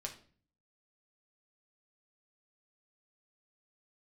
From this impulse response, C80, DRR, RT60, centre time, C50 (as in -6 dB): 15.5 dB, 1.0 dB, 0.45 s, 13 ms, 11.0 dB